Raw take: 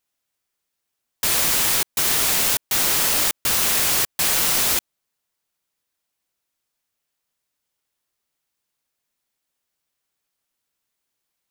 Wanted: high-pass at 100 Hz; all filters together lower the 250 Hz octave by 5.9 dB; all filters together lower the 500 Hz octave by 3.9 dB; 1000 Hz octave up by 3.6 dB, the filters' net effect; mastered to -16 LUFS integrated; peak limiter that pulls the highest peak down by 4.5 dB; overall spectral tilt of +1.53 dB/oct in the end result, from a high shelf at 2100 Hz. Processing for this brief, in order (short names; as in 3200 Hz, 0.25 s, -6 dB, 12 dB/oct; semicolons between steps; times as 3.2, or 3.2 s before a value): HPF 100 Hz; bell 250 Hz -6.5 dB; bell 500 Hz -5.5 dB; bell 1000 Hz +5 dB; high shelf 2100 Hz +4.5 dB; gain -1.5 dB; limiter -7.5 dBFS